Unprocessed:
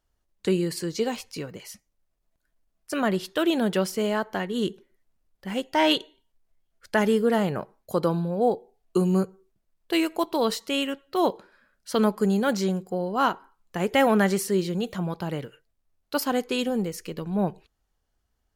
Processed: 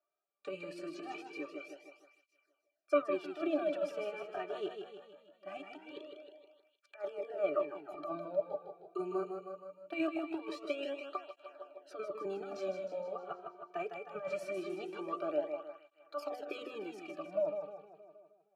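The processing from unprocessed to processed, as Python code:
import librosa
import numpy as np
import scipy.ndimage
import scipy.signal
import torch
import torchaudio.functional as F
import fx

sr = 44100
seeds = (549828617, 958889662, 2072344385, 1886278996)

p1 = scipy.signal.sosfilt(scipy.signal.butter(4, 460.0, 'highpass', fs=sr, output='sos'), x)
p2 = fx.over_compress(p1, sr, threshold_db=-30.0, ratio=-0.5)
p3 = fx.octave_resonator(p2, sr, note='D', decay_s=0.1)
p4 = p3 + fx.echo_feedback(p3, sr, ms=156, feedback_pct=57, wet_db=-6, dry=0)
p5 = fx.flanger_cancel(p4, sr, hz=0.22, depth_ms=3.8)
y = p5 * librosa.db_to_amplitude(8.5)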